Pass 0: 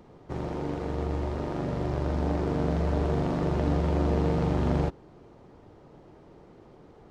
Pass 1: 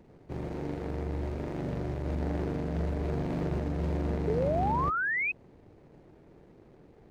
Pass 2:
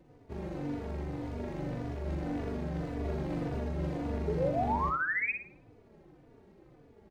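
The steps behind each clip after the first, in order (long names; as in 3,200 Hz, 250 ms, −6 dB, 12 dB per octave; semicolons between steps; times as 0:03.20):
running median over 41 samples; brickwall limiter −20.5 dBFS, peak gain reduction 5.5 dB; sound drawn into the spectrogram rise, 0:04.27–0:05.32, 400–2,600 Hz −27 dBFS; level −2.5 dB
on a send: feedback echo with a high-pass in the loop 62 ms, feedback 38%, high-pass 160 Hz, level −6 dB; on the sum: barber-pole flanger 3.4 ms −1.8 Hz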